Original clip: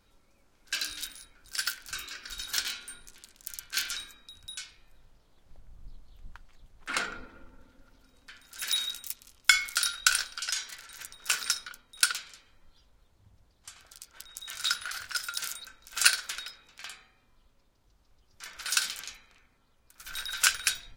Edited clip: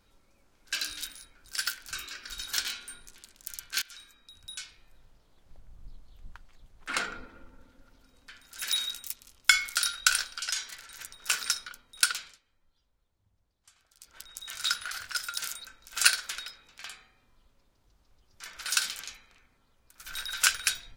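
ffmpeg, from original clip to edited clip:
ffmpeg -i in.wav -filter_complex "[0:a]asplit=4[link_01][link_02][link_03][link_04];[link_01]atrim=end=3.82,asetpts=PTS-STARTPTS,afade=type=out:start_time=3.816:duration=0.004:curve=hsin:silence=0.0944061[link_05];[link_02]atrim=start=3.82:end=12.39,asetpts=PTS-STARTPTS,afade=type=in:duration=0.74:silence=0.0944061,afade=type=out:start_time=8.43:duration=0.14:silence=0.237137[link_06];[link_03]atrim=start=12.39:end=13.96,asetpts=PTS-STARTPTS,volume=-12.5dB[link_07];[link_04]atrim=start=13.96,asetpts=PTS-STARTPTS,afade=type=in:duration=0.14:silence=0.237137[link_08];[link_05][link_06][link_07][link_08]concat=n=4:v=0:a=1" out.wav

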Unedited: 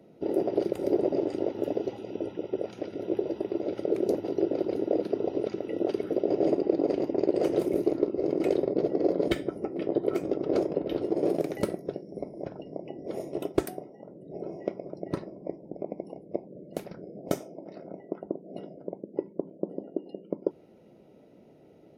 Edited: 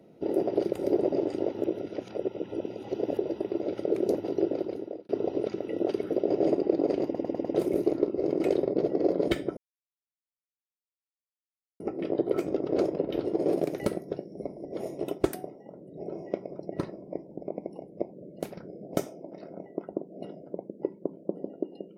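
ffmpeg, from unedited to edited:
ffmpeg -i in.wav -filter_complex "[0:a]asplit=11[link_01][link_02][link_03][link_04][link_05][link_06][link_07][link_08][link_09][link_10][link_11];[link_01]atrim=end=1.642[link_12];[link_02]atrim=start=1.638:end=3.172,asetpts=PTS-STARTPTS,areverse[link_13];[link_03]atrim=start=3.168:end=5.09,asetpts=PTS-STARTPTS,afade=type=out:start_time=1.282:duration=0.64[link_14];[link_04]atrim=start=5.09:end=7.152,asetpts=PTS-STARTPTS,afade=type=in:duration=0.004:curve=hsin[link_15];[link_05]atrim=start=7.048:end=7.152[link_16];[link_06]atrim=start=7.048:end=7.152[link_17];[link_07]atrim=start=7.048:end=7.152[link_18];[link_08]atrim=start=7.048:end=7.152[link_19];[link_09]atrim=start=7.548:end=9.57,asetpts=PTS-STARTPTS,afade=type=out:start_time=2.018:duration=0.004:curve=hsin,apad=pad_dur=2.23[link_20];[link_10]atrim=start=9.57:end=12.422,asetpts=PTS-STARTPTS,afade=type=in:duration=0.004:curve=hsin[link_21];[link_11]atrim=start=12.988[link_22];[link_12][link_13]acrossfade=duration=0.004:curve1=hsin:curve2=hsin[link_23];[link_14][link_15]concat=n=2:v=0:a=1[link_24];[link_23][link_24]acrossfade=duration=0.004:curve1=hsin:curve2=hsin[link_25];[link_25][link_16]acrossfade=duration=0.004:curve1=hsin:curve2=hsin[link_26];[link_26][link_17]acrossfade=duration=0.004:curve1=hsin:curve2=hsin[link_27];[link_27][link_18]acrossfade=duration=0.004:curve1=hsin:curve2=hsin[link_28];[link_28][link_19]acrossfade=duration=0.004:curve1=hsin:curve2=hsin[link_29];[link_20][link_21]concat=n=2:v=0:a=1[link_30];[link_29][link_30]acrossfade=duration=0.004:curve1=hsin:curve2=hsin[link_31];[link_31][link_22]acrossfade=duration=0.004:curve1=hsin:curve2=hsin" out.wav

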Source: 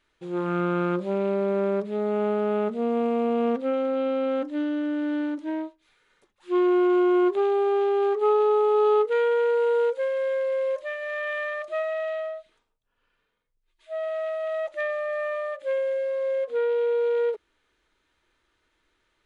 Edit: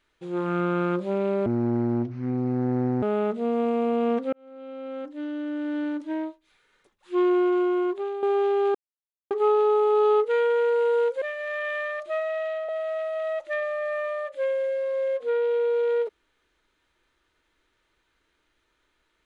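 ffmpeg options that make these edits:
ffmpeg -i in.wav -filter_complex "[0:a]asplit=8[link_01][link_02][link_03][link_04][link_05][link_06][link_07][link_08];[link_01]atrim=end=1.464[link_09];[link_02]atrim=start=1.46:end=2.4,asetpts=PTS-STARTPTS,asetrate=26460,aresample=44100[link_10];[link_03]atrim=start=2.396:end=3.7,asetpts=PTS-STARTPTS,afade=type=out:start_time=1.3:duration=0.004:curve=hsin[link_11];[link_04]atrim=start=3.7:end=7.6,asetpts=PTS-STARTPTS,afade=type=in:duration=1.73,afade=type=out:start_time=2.92:duration=0.98:silence=0.316228[link_12];[link_05]atrim=start=7.6:end=8.12,asetpts=PTS-STARTPTS,afade=type=in:duration=0.004:curve=hsin:silence=0.316228,afade=type=out:start_time=0.516:duration=0.004:curve=hsin,apad=pad_dur=0.56[link_13];[link_06]atrim=start=8.12:end=10.032,asetpts=PTS-STARTPTS,afade=type=in:duration=0.004:curve=hsin[link_14];[link_07]atrim=start=10.838:end=12.312[link_15];[link_08]atrim=start=13.958[link_16];[link_09][link_10]acrossfade=duration=0.004:curve1=hsin:curve2=hsin[link_17];[link_11][link_12][link_13][link_14]concat=n=4:v=0:a=1[link_18];[link_17][link_18]acrossfade=duration=0.004:curve1=hsin:curve2=hsin[link_19];[link_19][link_15]acrossfade=duration=0.004:curve1=hsin:curve2=hsin[link_20];[link_20][link_16]acrossfade=duration=0.004:curve1=hsin:curve2=hsin" out.wav

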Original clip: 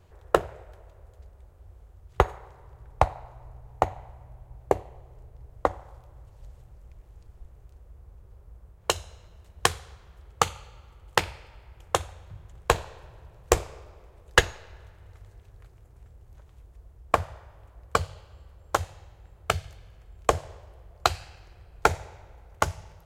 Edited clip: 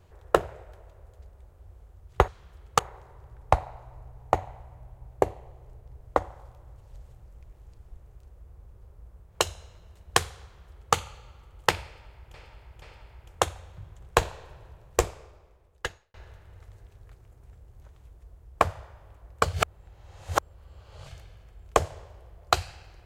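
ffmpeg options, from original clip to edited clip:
ffmpeg -i in.wav -filter_complex "[0:a]asplit=8[link_01][link_02][link_03][link_04][link_05][link_06][link_07][link_08];[link_01]atrim=end=2.282[link_09];[link_02]atrim=start=9.918:end=10.432[link_10];[link_03]atrim=start=2.278:end=11.832[link_11];[link_04]atrim=start=11.348:end=11.832[link_12];[link_05]atrim=start=11.348:end=14.67,asetpts=PTS-STARTPTS,afade=type=out:start_time=1.842:duration=1.48[link_13];[link_06]atrim=start=14.67:end=18.062,asetpts=PTS-STARTPTS,afade=type=in:duration=0.004:curve=hsin[link_14];[link_07]atrim=start=18.058:end=19.602,asetpts=PTS-STARTPTS,areverse[link_15];[link_08]atrim=start=19.598[link_16];[link_09][link_10]acrossfade=duration=0.004:curve1=hsin:curve2=hsin[link_17];[link_17][link_11]acrossfade=duration=0.004:curve1=hsin:curve2=hsin[link_18];[link_18][link_12]acrossfade=duration=0.004:curve1=hsin:curve2=hsin[link_19];[link_13][link_14]concat=n=2:v=0:a=1[link_20];[link_19][link_20]acrossfade=duration=0.004:curve1=hsin:curve2=hsin[link_21];[link_21][link_15]acrossfade=duration=0.004:curve1=hsin:curve2=hsin[link_22];[link_22][link_16]acrossfade=duration=0.004:curve1=hsin:curve2=hsin" out.wav

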